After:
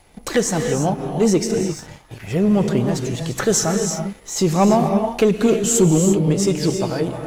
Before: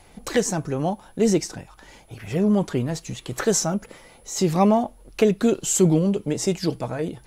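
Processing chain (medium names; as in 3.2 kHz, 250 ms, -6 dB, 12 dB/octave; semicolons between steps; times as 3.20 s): gated-style reverb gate 370 ms rising, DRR 5 dB; waveshaping leveller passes 1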